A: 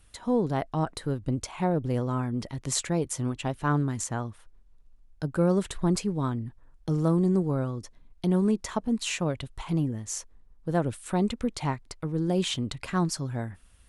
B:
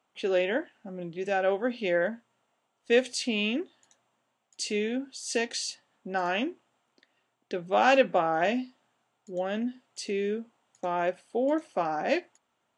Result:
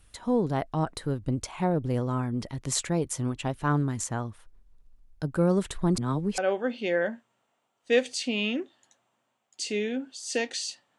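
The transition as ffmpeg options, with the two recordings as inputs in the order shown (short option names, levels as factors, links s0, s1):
-filter_complex "[0:a]apad=whole_dur=10.98,atrim=end=10.98,asplit=2[s0][s1];[s0]atrim=end=5.982[s2];[s1]atrim=start=5.978:end=6.382,asetpts=PTS-STARTPTS,areverse[s3];[1:a]atrim=start=1.378:end=5.98[s4];[s2][s3]acrossfade=d=0.004:c1=hsin:c2=hsin[s5];[s5][s4]acrossfade=d=0.004:c1=hsin:c2=hsin"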